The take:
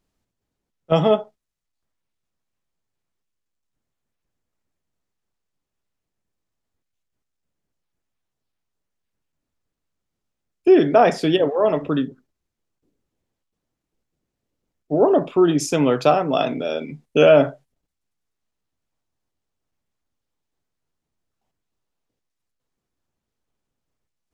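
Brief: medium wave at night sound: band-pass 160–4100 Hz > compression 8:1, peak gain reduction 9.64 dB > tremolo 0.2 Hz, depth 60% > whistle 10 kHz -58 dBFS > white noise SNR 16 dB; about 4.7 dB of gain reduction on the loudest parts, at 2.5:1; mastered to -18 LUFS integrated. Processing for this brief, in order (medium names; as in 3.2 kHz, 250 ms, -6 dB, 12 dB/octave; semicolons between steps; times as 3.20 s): compression 2.5:1, threshold -15 dBFS; band-pass 160–4100 Hz; compression 8:1, threshold -22 dBFS; tremolo 0.2 Hz, depth 60%; whistle 10 kHz -58 dBFS; white noise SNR 16 dB; trim +12.5 dB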